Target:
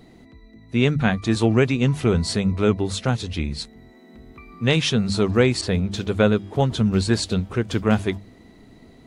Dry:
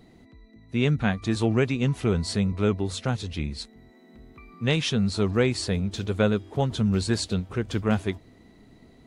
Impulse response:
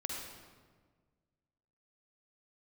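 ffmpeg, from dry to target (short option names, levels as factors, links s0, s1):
-filter_complex "[0:a]bandreject=f=50:t=h:w=6,bandreject=f=100:t=h:w=6,bandreject=f=150:t=h:w=6,bandreject=f=200:t=h:w=6,asettb=1/sr,asplit=3[s0][s1][s2];[s0]atrim=end=5.614[s3];[s1]atrim=start=5.61:end=7.23,asetpts=PTS-STARTPTS,afade=t=in:d=0.004:c=qsin,afade=t=out:st=1.616:d=0.004:c=qsin,adynamicequalizer=threshold=0.00447:dfrequency=4600:dqfactor=0.7:tfrequency=4600:tqfactor=0.7:attack=5:release=100:ratio=0.375:range=2:mode=cutabove:tftype=highshelf[s4];[s2]atrim=start=7.226[s5];[s3][s4]acrossfade=d=0.004:c1=hsin:c2=qsin[s6];[s6][s5]acrossfade=d=0.004:c1=qsin:c2=hsin,volume=1.78"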